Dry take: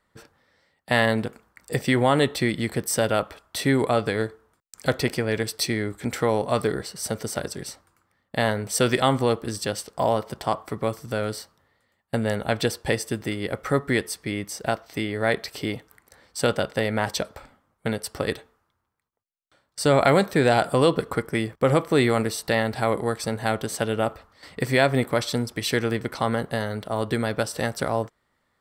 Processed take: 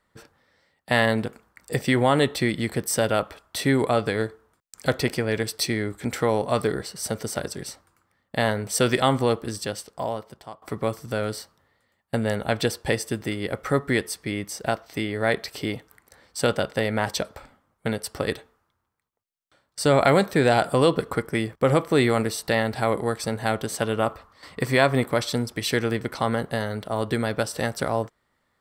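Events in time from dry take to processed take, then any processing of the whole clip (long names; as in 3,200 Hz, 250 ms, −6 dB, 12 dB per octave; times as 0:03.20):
0:09.35–0:10.62: fade out, to −21.5 dB
0:23.82–0:25.06: parametric band 1,100 Hz +7.5 dB 0.31 octaves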